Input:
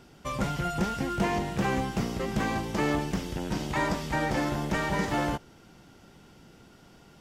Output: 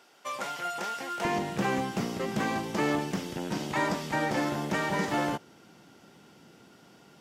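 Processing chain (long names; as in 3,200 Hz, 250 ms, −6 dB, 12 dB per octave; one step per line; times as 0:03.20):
high-pass filter 590 Hz 12 dB per octave, from 0:01.25 160 Hz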